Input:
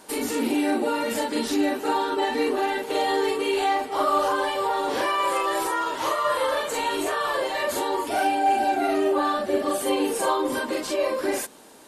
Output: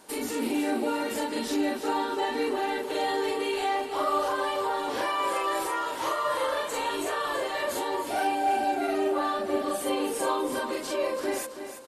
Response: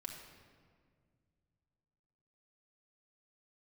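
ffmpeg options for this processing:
-af "aecho=1:1:328|656|984|1312|1640:0.316|0.136|0.0585|0.0251|0.0108,volume=-4.5dB"

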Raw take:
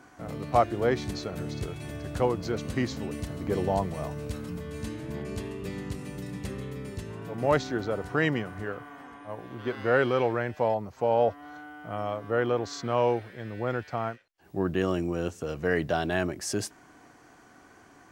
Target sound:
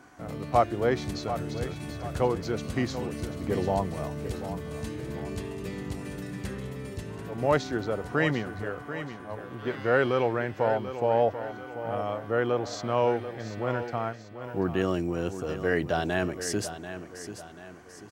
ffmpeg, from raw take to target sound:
ffmpeg -i in.wav -filter_complex "[0:a]asettb=1/sr,asplit=3[link_01][link_02][link_03];[link_01]atrim=end=6.014[link_04];[link_02]atrim=start=6.01:end=6.59,asetpts=PTS-STARTPTS,afade=type=in:duration=0.004:curve=qsin,afade=type=out:start_time=0.576:duration=0.004:curve=qsin,equalizer=frequency=1600:width=4.1:gain=7.5[link_05];[link_03]atrim=start=6.586[link_06];[link_04][link_05]acrossfade=duration=0.004:curve1=hsin:curve2=qsin[link_07];[link_07][link_06]acrossfade=duration=0.004:curve1=qsin:curve2=hsin,aecho=1:1:738|1476|2214|2952:0.282|0.118|0.0497|0.0209" out.wav

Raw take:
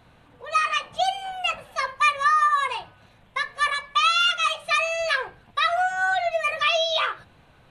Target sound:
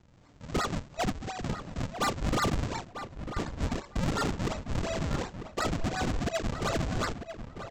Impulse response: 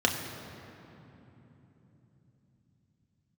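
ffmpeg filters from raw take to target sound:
-filter_complex "[0:a]highshelf=frequency=2200:gain=-7.5,aresample=16000,acrusher=samples=25:mix=1:aa=0.000001:lfo=1:lforange=40:lforate=2.8,aresample=44100,asoftclip=type=tanh:threshold=-20.5dB,asplit=2[link_01][link_02];[link_02]adelay=946,lowpass=frequency=2500:poles=1,volume=-9.5dB,asplit=2[link_03][link_04];[link_04]adelay=946,lowpass=frequency=2500:poles=1,volume=0.16[link_05];[link_01][link_03][link_05]amix=inputs=3:normalize=0,volume=-3dB"

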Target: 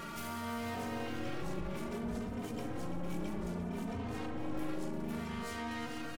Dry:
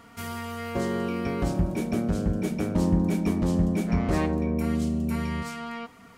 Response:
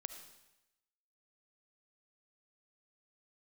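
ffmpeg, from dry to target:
-filter_complex "[0:a]acompressor=threshold=-37dB:ratio=2.5,asplit=2[link_01][link_02];[link_02]adelay=456,lowpass=frequency=4100:poles=1,volume=-7.5dB,asplit=2[link_03][link_04];[link_04]adelay=456,lowpass=frequency=4100:poles=1,volume=0.49,asplit=2[link_05][link_06];[link_06]adelay=456,lowpass=frequency=4100:poles=1,volume=0.49,asplit=2[link_07][link_08];[link_08]adelay=456,lowpass=frequency=4100:poles=1,volume=0.49,asplit=2[link_09][link_10];[link_10]adelay=456,lowpass=frequency=4100:poles=1,volume=0.49,asplit=2[link_11][link_12];[link_12]adelay=456,lowpass=frequency=4100:poles=1,volume=0.49[link_13];[link_03][link_05][link_07][link_09][link_11][link_13]amix=inputs=6:normalize=0[link_14];[link_01][link_14]amix=inputs=2:normalize=0,aeval=exprs='(tanh(112*val(0)+0.4)-tanh(0.4))/112':channel_layout=same,acontrast=85,alimiter=level_in=18.5dB:limit=-24dB:level=0:latency=1:release=42,volume=-18.5dB,equalizer=frequency=68:width=3.9:gain=-9.5,asplit=2[link_15][link_16];[link_16]aecho=0:1:78|343|621:0.126|0.266|0.251[link_17];[link_15][link_17]amix=inputs=2:normalize=0,asplit=2[link_18][link_19];[link_19]asetrate=58866,aresample=44100,atempo=0.749154,volume=-5dB[link_20];[link_18][link_20]amix=inputs=2:normalize=0,asplit=2[link_21][link_22];[link_22]adelay=3.1,afreqshift=0.62[link_23];[link_21][link_23]amix=inputs=2:normalize=1,volume=9.5dB"

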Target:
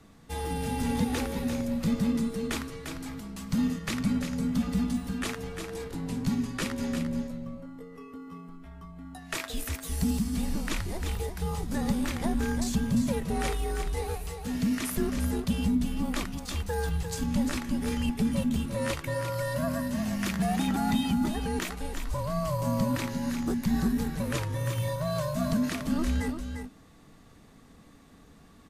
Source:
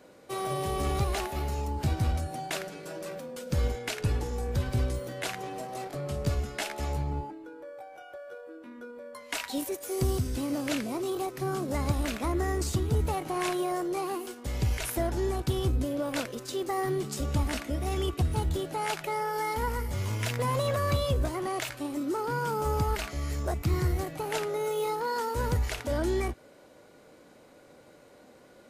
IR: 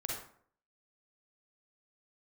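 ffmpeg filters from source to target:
-af "aecho=1:1:349:0.422,afreqshift=-310"

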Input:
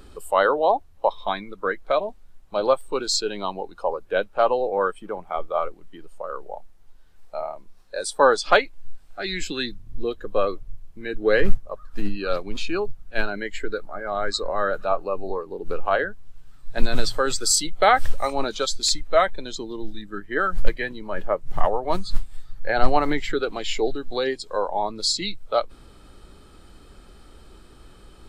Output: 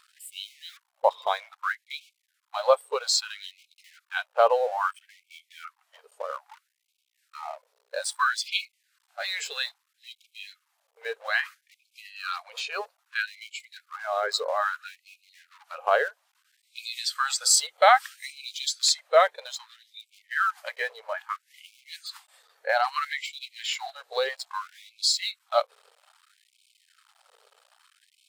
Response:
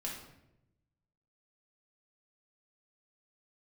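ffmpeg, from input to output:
-af "aeval=exprs='val(0)+0.00447*(sin(2*PI*60*n/s)+sin(2*PI*2*60*n/s)/2+sin(2*PI*3*60*n/s)/3+sin(2*PI*4*60*n/s)/4+sin(2*PI*5*60*n/s)/5)':channel_layout=same,aeval=exprs='sgn(val(0))*max(abs(val(0))-0.00562,0)':channel_layout=same,afftfilt=real='re*gte(b*sr/1024,400*pow(2200/400,0.5+0.5*sin(2*PI*0.61*pts/sr)))':imag='im*gte(b*sr/1024,400*pow(2200/400,0.5+0.5*sin(2*PI*0.61*pts/sr)))':win_size=1024:overlap=0.75"

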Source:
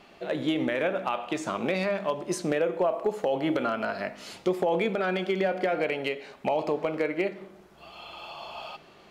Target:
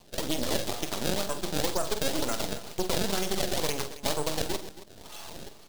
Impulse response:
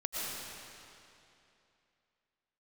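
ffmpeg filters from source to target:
-filter_complex "[0:a]acrusher=samples=23:mix=1:aa=0.000001:lfo=1:lforange=36.8:lforate=1.3,highshelf=frequency=2900:width_type=q:width=1.5:gain=7,atempo=1.6,aeval=exprs='max(val(0),0)':channel_layout=same,asplit=2[link_01][link_02];[link_02]aecho=0:1:46|127|273:0.299|0.158|0.168[link_03];[link_01][link_03]amix=inputs=2:normalize=0"

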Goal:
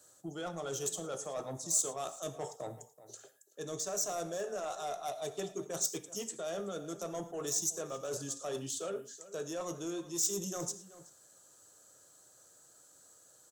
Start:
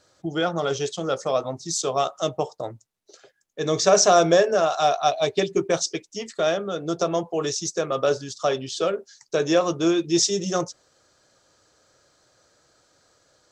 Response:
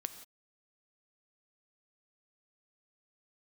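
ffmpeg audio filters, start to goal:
-filter_complex "[0:a]highpass=96,equalizer=frequency=2200:width=4.4:gain=-9,areverse,acompressor=threshold=-29dB:ratio=6,areverse,asoftclip=type=tanh:threshold=-24.5dB,acrossover=split=160[link_01][link_02];[link_02]aexciter=amount=12:drive=3.3:freq=7200[link_03];[link_01][link_03]amix=inputs=2:normalize=0,asplit=2[link_04][link_05];[link_05]adelay=379,volume=-16dB,highshelf=frequency=4000:gain=-8.53[link_06];[link_04][link_06]amix=inputs=2:normalize=0[link_07];[1:a]atrim=start_sample=2205,atrim=end_sample=3969,asetrate=33516,aresample=44100[link_08];[link_07][link_08]afir=irnorm=-1:irlink=0,volume=-5.5dB"

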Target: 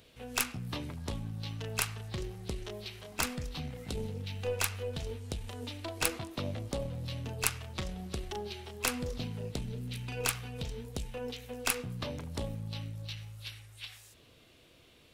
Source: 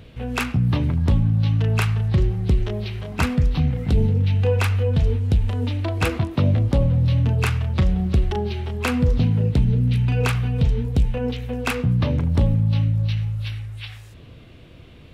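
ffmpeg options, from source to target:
ffmpeg -i in.wav -af "bass=frequency=250:gain=-11,treble=frequency=4000:gain=13,aeval=exprs='0.75*(cos(1*acos(clip(val(0)/0.75,-1,1)))-cos(1*PI/2))+0.211*(cos(3*acos(clip(val(0)/0.75,-1,1)))-cos(3*PI/2))+0.0237*(cos(5*acos(clip(val(0)/0.75,-1,1)))-cos(5*PI/2))+0.0211*(cos(6*acos(clip(val(0)/0.75,-1,1)))-cos(6*PI/2))':channel_layout=same,volume=-1dB" out.wav

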